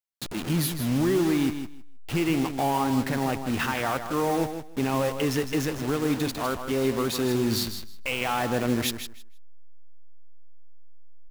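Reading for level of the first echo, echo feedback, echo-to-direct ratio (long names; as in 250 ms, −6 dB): −9.0 dB, 17%, −9.0 dB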